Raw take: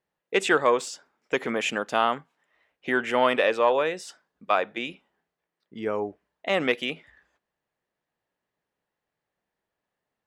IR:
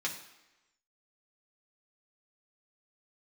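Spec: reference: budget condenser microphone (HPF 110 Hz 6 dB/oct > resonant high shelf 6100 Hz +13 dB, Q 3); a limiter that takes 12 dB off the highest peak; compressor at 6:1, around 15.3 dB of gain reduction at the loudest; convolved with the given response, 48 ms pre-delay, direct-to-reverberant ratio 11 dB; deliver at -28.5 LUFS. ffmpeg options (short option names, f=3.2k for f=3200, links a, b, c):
-filter_complex "[0:a]acompressor=threshold=-33dB:ratio=6,alimiter=level_in=4dB:limit=-24dB:level=0:latency=1,volume=-4dB,asplit=2[a][b];[1:a]atrim=start_sample=2205,adelay=48[c];[b][c]afir=irnorm=-1:irlink=0,volume=-15dB[d];[a][d]amix=inputs=2:normalize=0,highpass=f=110:p=1,highshelf=f=6.1k:t=q:w=3:g=13,volume=9dB"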